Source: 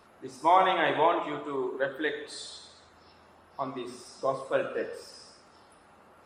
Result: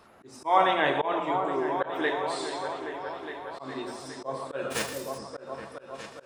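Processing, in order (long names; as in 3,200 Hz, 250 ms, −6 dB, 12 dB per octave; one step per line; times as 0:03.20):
0:04.70–0:05.17: spectral envelope flattened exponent 0.3
echo whose low-pass opens from repeat to repeat 412 ms, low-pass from 400 Hz, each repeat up 2 octaves, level −6 dB
volume swells 143 ms
level +1.5 dB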